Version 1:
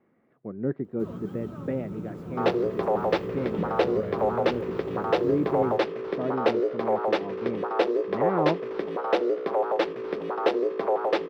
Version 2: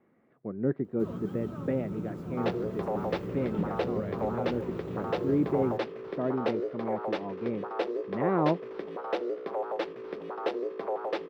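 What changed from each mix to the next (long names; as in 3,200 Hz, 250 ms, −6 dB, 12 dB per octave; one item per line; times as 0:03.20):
second sound −7.5 dB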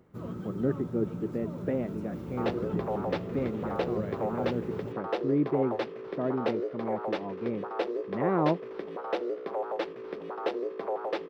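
first sound: entry −0.85 s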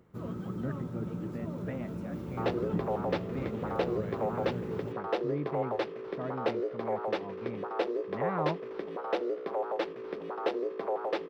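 speech: add parametric band 380 Hz −15 dB 1.4 octaves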